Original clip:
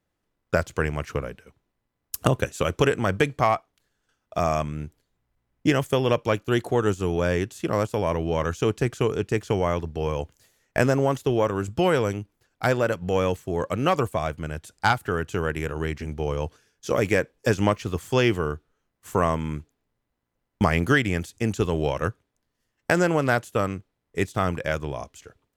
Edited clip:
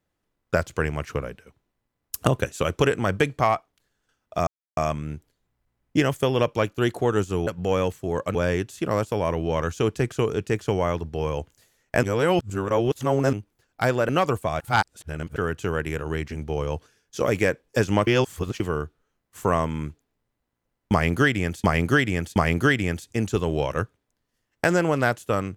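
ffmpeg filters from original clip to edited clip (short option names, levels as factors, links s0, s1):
-filter_complex "[0:a]asplit=13[s0][s1][s2][s3][s4][s5][s6][s7][s8][s9][s10][s11][s12];[s0]atrim=end=4.47,asetpts=PTS-STARTPTS,afade=t=out:st=4.466:d=0.004:c=hsin,apad=pad_dur=0.3[s13];[s1]atrim=start=4.47:end=7.172,asetpts=PTS-STARTPTS,afade=t=in:d=0.004:c=hsin[s14];[s2]atrim=start=12.908:end=13.792[s15];[s3]atrim=start=7.168:end=10.852[s16];[s4]atrim=start=10.848:end=12.152,asetpts=PTS-STARTPTS,areverse[s17];[s5]atrim=start=12.148:end=12.912[s18];[s6]atrim=start=13.788:end=14.302[s19];[s7]atrim=start=14.298:end=15.062,asetpts=PTS-STARTPTS,areverse[s20];[s8]atrim=start=15.058:end=17.772[s21];[s9]atrim=start=17.768:end=18.302,asetpts=PTS-STARTPTS,areverse[s22];[s10]atrim=start=18.298:end=21.342[s23];[s11]atrim=start=20.618:end=21.342[s24];[s12]atrim=start=20.618[s25];[s13][s14]concat=n=2:v=0:a=1[s26];[s26][s15]acrossfade=d=0.004:c1=hsin:c2=hsin[s27];[s27][s16]acrossfade=d=0.004:c1=hsin:c2=hsin[s28];[s28][s17]acrossfade=d=0.004:c1=hsin:c2=hsin[s29];[s29][s18]acrossfade=d=0.004:c1=hsin:c2=hsin[s30];[s30][s19]acrossfade=d=0.004:c1=hsin:c2=hsin[s31];[s31][s20]acrossfade=d=0.004:c1=hsin:c2=hsin[s32];[s32][s21]acrossfade=d=0.004:c1=hsin:c2=hsin[s33];[s33][s22]acrossfade=d=0.004:c1=hsin:c2=hsin[s34];[s34][s23]acrossfade=d=0.004:c1=hsin:c2=hsin[s35];[s35][s24]acrossfade=d=0.004:c1=hsin:c2=hsin[s36];[s36][s25]acrossfade=d=0.004:c1=hsin:c2=hsin"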